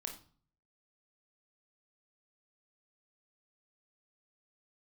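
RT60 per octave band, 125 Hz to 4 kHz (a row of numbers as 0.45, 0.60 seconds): 0.70, 0.60, 0.45, 0.45, 0.35, 0.35 seconds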